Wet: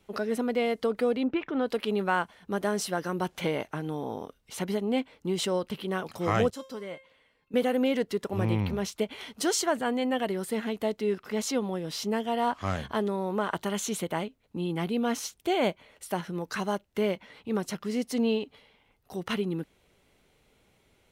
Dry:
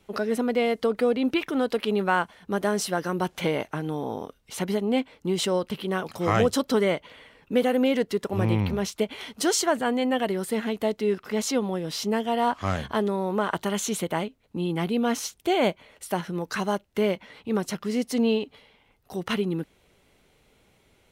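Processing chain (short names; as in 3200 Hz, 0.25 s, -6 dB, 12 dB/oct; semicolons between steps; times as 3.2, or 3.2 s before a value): 1.23–1.65 LPF 1500 Hz -> 3600 Hz 12 dB/oct; 6.5–7.54 resonator 530 Hz, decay 0.38 s, mix 80%; gain -3.5 dB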